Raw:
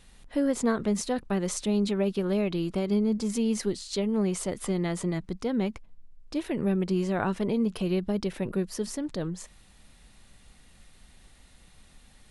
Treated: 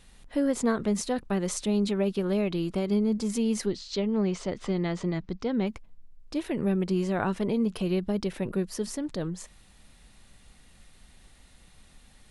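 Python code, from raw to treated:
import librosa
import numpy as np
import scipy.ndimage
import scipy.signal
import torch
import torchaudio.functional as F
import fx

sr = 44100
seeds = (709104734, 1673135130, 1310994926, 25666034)

y = fx.lowpass(x, sr, hz=5900.0, slope=24, at=(3.66, 5.67))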